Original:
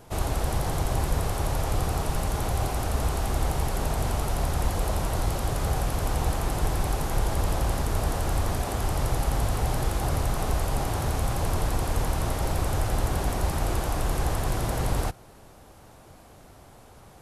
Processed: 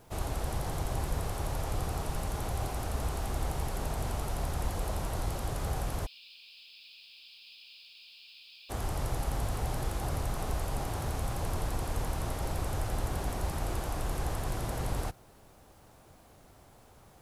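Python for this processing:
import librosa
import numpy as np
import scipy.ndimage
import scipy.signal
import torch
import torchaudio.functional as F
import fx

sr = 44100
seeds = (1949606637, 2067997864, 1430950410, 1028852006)

y = fx.cheby1_bandpass(x, sr, low_hz=2400.0, high_hz=5100.0, order=5, at=(6.05, 8.69), fade=0.02)
y = fx.quant_dither(y, sr, seeds[0], bits=10, dither='none')
y = F.gain(torch.from_numpy(y), -7.0).numpy()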